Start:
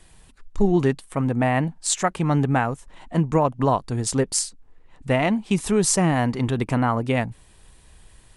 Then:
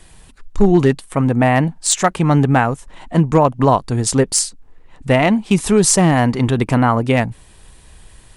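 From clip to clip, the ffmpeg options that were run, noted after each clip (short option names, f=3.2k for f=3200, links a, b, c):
-af "asoftclip=type=hard:threshold=-10.5dB,volume=7dB"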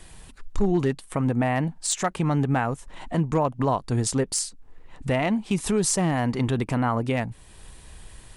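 -af "alimiter=limit=-12.5dB:level=0:latency=1:release=404,volume=-1.5dB"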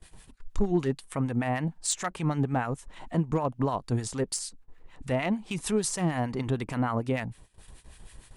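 -filter_complex "[0:a]acrossover=split=1100[a][b];[a]aeval=exprs='val(0)*(1-0.7/2+0.7/2*cos(2*PI*6.6*n/s))':c=same[c];[b]aeval=exprs='val(0)*(1-0.7/2-0.7/2*cos(2*PI*6.6*n/s))':c=same[d];[c][d]amix=inputs=2:normalize=0,agate=range=-17dB:threshold=-48dB:ratio=16:detection=peak,volume=-1.5dB"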